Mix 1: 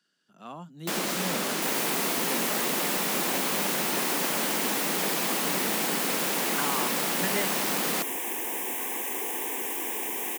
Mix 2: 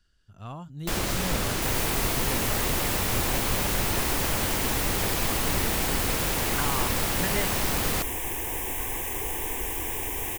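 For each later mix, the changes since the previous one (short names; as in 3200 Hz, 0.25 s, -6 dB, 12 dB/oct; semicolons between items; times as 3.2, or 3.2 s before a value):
master: remove steep high-pass 170 Hz 48 dB/oct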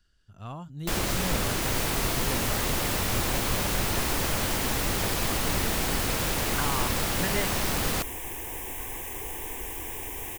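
second sound -5.0 dB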